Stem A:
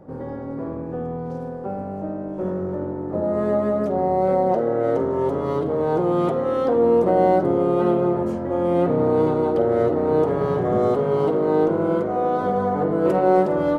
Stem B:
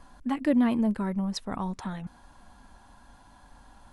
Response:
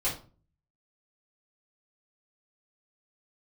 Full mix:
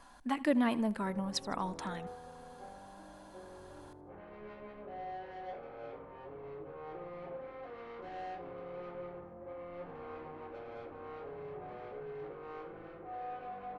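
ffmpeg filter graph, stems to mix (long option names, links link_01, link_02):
-filter_complex "[0:a]lowpass=1600,asoftclip=type=tanh:threshold=-21.5dB,aeval=exprs='val(0)+0.00794*(sin(2*PI*50*n/s)+sin(2*PI*2*50*n/s)/2+sin(2*PI*3*50*n/s)/3+sin(2*PI*4*50*n/s)/4+sin(2*PI*5*50*n/s)/5)':channel_layout=same,adelay=950,volume=-16.5dB,asplit=2[link_01][link_02];[link_02]volume=-8.5dB[link_03];[1:a]volume=0dB,asplit=3[link_04][link_05][link_06];[link_05]volume=-20.5dB[link_07];[link_06]apad=whole_len=649873[link_08];[link_01][link_08]sidechaingate=range=-33dB:threshold=-44dB:ratio=16:detection=peak[link_09];[2:a]atrim=start_sample=2205[link_10];[link_03][link_10]afir=irnorm=-1:irlink=0[link_11];[link_07]aecho=0:1:79|158|237|316|395|474:1|0.45|0.202|0.0911|0.041|0.0185[link_12];[link_09][link_04][link_11][link_12]amix=inputs=4:normalize=0,lowshelf=frequency=300:gain=-12"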